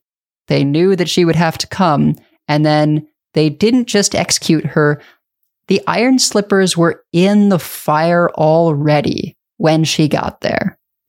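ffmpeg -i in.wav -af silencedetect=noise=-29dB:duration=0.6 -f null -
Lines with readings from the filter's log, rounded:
silence_start: 4.96
silence_end: 5.69 | silence_duration: 0.72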